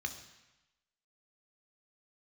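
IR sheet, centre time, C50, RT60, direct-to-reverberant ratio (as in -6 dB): 14 ms, 10.0 dB, 1.0 s, 5.5 dB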